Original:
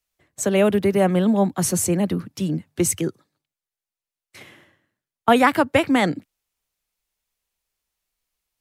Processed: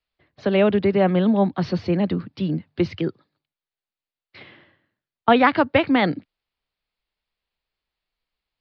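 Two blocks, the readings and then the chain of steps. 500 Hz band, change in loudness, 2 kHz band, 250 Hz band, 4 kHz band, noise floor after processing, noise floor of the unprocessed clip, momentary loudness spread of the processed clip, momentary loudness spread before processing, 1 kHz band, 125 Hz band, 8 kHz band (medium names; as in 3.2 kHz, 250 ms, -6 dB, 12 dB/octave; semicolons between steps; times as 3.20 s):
0.0 dB, -0.5 dB, 0.0 dB, 0.0 dB, -0.5 dB, under -85 dBFS, under -85 dBFS, 10 LU, 10 LU, 0.0 dB, 0.0 dB, under -30 dB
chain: steep low-pass 4.8 kHz 72 dB/octave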